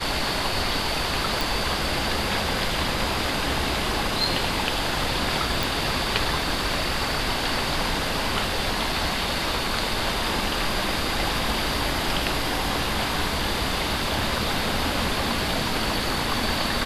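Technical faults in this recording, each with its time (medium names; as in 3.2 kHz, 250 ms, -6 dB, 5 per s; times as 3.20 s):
1.41 s: pop
5.63 s: pop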